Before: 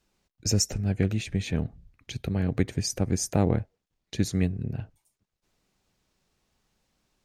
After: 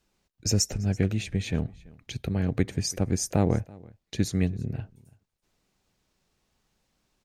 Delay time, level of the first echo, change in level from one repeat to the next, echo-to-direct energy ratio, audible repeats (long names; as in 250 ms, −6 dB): 333 ms, −23.5 dB, repeats not evenly spaced, −23.5 dB, 1